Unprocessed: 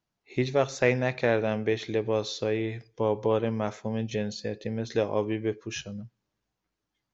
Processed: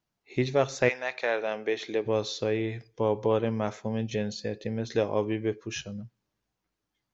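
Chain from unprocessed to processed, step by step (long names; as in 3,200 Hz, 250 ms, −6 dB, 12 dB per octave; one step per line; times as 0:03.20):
0:00.88–0:02.05: high-pass filter 930 Hz → 250 Hz 12 dB per octave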